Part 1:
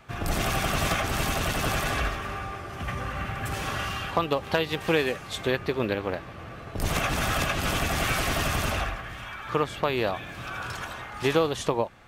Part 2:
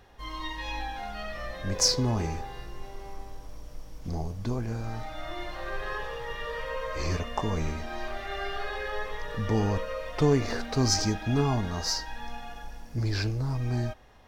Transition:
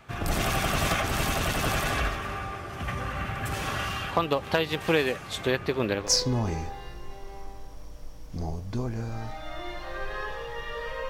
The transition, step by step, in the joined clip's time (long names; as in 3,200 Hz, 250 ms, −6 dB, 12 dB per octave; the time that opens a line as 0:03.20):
part 1
0:06.05: continue with part 2 from 0:01.77, crossfade 0.12 s